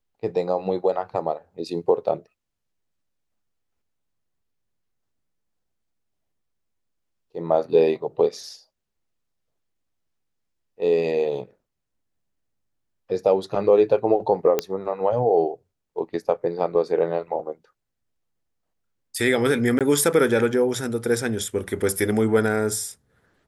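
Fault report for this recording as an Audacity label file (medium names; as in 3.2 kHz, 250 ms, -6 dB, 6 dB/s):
14.590000	14.590000	pop -7 dBFS
19.790000	19.810000	dropout 17 ms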